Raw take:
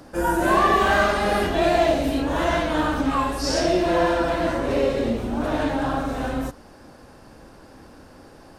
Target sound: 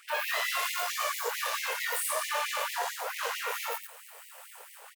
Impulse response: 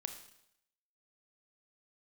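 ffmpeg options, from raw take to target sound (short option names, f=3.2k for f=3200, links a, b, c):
-filter_complex "[0:a]acrossover=split=380|530|6100[a][b][c][d];[d]dynaudnorm=f=170:g=5:m=16dB[e];[a][b][c][e]amix=inputs=4:normalize=0,alimiter=limit=-18.5dB:level=0:latency=1:release=158,aeval=exprs='max(val(0),0)':c=same,aecho=1:1:43.73|198.3:0.708|0.501,asetrate=76440,aresample=44100,afftfilt=real='re*gte(b*sr/1024,410*pow(1900/410,0.5+0.5*sin(2*PI*4.5*pts/sr)))':imag='im*gte(b*sr/1024,410*pow(1900/410,0.5+0.5*sin(2*PI*4.5*pts/sr)))':win_size=1024:overlap=0.75"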